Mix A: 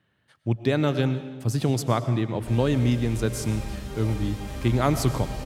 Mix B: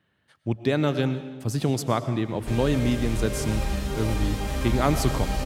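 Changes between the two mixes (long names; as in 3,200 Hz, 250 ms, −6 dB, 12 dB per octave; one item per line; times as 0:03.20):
background +7.0 dB
master: add parametric band 120 Hz −5 dB 0.25 octaves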